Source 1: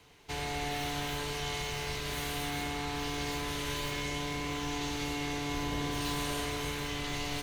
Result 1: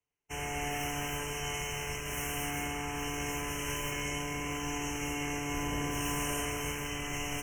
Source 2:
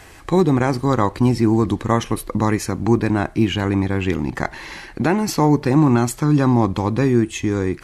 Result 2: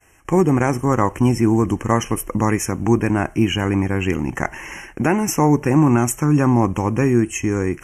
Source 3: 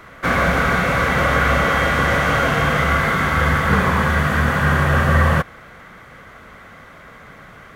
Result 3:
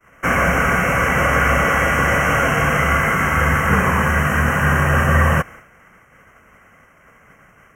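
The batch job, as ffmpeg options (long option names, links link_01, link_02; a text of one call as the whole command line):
ffmpeg -i in.wav -af "asuperstop=centerf=4100:order=20:qfactor=1.8,highshelf=frequency=3100:gain=5.5,agate=range=-33dB:threshold=-33dB:ratio=3:detection=peak" out.wav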